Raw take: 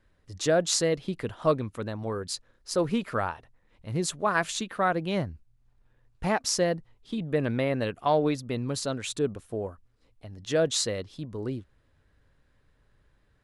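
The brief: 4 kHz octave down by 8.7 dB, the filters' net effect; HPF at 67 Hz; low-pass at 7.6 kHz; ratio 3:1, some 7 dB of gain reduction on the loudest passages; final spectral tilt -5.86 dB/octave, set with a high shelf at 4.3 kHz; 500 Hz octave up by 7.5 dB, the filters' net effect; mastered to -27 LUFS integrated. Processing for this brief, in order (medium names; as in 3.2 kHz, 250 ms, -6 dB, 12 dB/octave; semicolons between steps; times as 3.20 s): high-pass 67 Hz; low-pass 7.6 kHz; peaking EQ 500 Hz +9 dB; peaking EQ 4 kHz -7 dB; treble shelf 4.3 kHz -6 dB; compression 3:1, threshold -22 dBFS; trim +1.5 dB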